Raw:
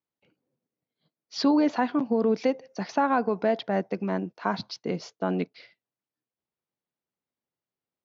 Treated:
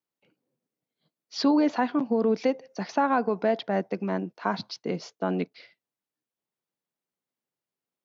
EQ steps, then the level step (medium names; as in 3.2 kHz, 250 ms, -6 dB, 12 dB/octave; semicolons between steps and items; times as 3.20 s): high-pass 120 Hz; 0.0 dB